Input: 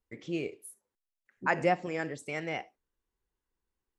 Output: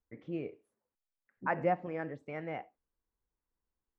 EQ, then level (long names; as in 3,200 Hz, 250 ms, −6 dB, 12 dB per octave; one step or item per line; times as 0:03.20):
low-pass filter 1,500 Hz 12 dB per octave
parametric band 380 Hz −6.5 dB 0.2 octaves
−2.5 dB